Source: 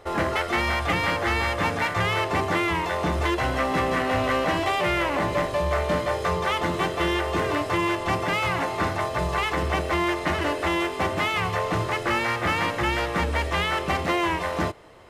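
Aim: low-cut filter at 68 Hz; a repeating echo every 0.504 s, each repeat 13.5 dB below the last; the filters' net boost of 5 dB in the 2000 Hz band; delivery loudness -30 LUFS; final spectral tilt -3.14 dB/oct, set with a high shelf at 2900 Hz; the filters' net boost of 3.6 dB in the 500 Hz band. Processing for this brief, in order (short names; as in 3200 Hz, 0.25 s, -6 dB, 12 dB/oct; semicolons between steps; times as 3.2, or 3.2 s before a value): HPF 68 Hz; bell 500 Hz +4.5 dB; bell 2000 Hz +8.5 dB; high shelf 2900 Hz -8 dB; feedback echo 0.504 s, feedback 21%, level -13.5 dB; gain -9 dB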